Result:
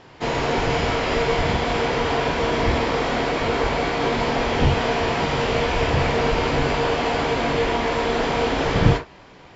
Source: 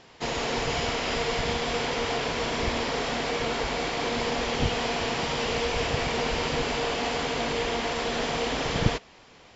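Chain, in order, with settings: high shelf 3500 Hz -11 dB; on a send: reverb, pre-delay 7 ms, DRR 2.5 dB; on the sum: gain +6 dB

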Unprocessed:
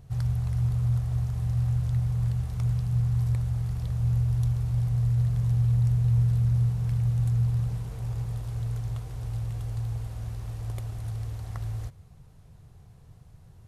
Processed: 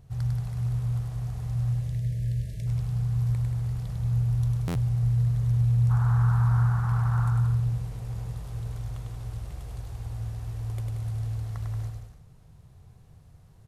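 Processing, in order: 1.72–2.66 spectral delete 670–1600 Hz; 5.89–7.29 band noise 750–1500 Hz -38 dBFS; bouncing-ball echo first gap 0.1 s, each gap 0.8×, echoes 5; stuck buffer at 4.67, samples 512, times 6; gain -3 dB

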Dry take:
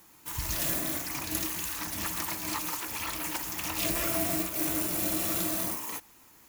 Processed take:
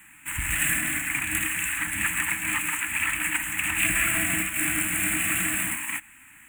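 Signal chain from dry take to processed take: half-waves squared off; EQ curve 300 Hz 0 dB, 430 Hz -28 dB, 760 Hz -5 dB, 1100 Hz -3 dB, 1700 Hz +13 dB, 2600 Hz +13 dB, 5200 Hz -28 dB, 7900 Hz +14 dB, 12000 Hz +2 dB; gain -3 dB

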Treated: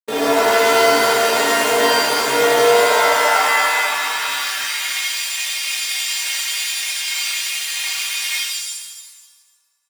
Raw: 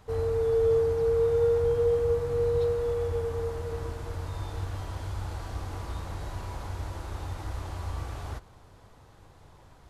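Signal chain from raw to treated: minimum comb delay 0.33 ms; high shelf 5200 Hz -6.5 dB; notch 1400 Hz, Q 13; compressor 8:1, threshold -40 dBFS, peak gain reduction 18 dB; companded quantiser 2-bit; metallic resonator 140 Hz, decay 0.22 s, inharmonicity 0.008; harmoniser -12 st -7 dB; high-pass sweep 360 Hz -> 2300 Hz, 2.45–5.09; on a send: analogue delay 86 ms, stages 1024, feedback 82%, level -21.5 dB; on the sum: maximiser +27.5 dB; shimmer reverb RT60 1.2 s, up +7 st, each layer -2 dB, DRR -7.5 dB; gain -13.5 dB

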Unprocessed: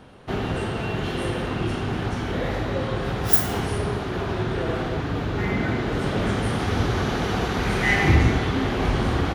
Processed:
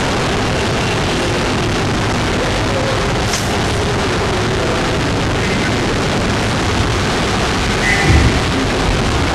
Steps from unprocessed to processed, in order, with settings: delta modulation 64 kbps, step -15.5 dBFS; LPF 6500 Hz 12 dB/oct; gain +6 dB

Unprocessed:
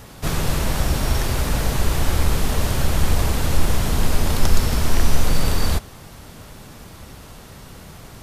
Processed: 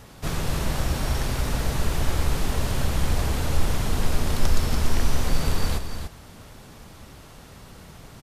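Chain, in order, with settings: high shelf 12000 Hz -5.5 dB; echo 0.289 s -8 dB; gain -5 dB

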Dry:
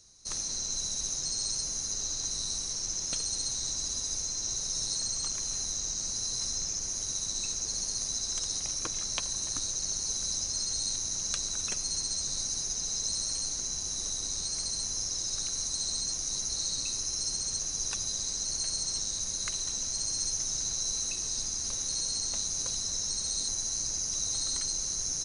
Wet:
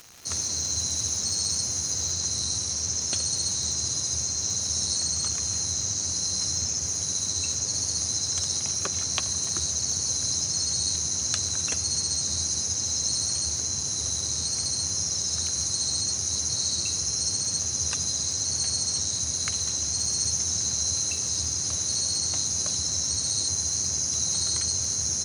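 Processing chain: frequency shift +67 Hz; crackle 400/s -41 dBFS, from 2.13 s 65/s; gain +5.5 dB

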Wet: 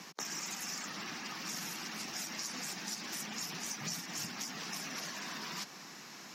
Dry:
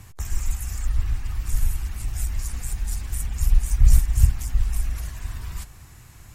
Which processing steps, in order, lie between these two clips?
steep high-pass 180 Hz 48 dB/oct; resonant high shelf 7000 Hz -8.5 dB, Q 3; compressor 6:1, threshold -40 dBFS, peak gain reduction 9 dB; gain +3.5 dB

